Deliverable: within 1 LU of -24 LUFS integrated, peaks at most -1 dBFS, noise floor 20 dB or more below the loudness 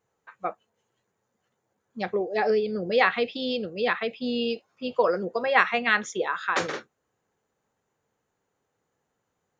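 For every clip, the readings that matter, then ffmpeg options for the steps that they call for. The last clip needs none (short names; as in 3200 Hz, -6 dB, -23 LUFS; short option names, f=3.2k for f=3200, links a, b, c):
loudness -26.0 LUFS; peak -4.5 dBFS; loudness target -24.0 LUFS
-> -af "volume=2dB"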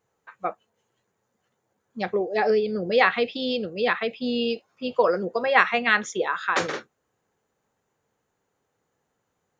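loudness -24.0 LUFS; peak -2.5 dBFS; noise floor -77 dBFS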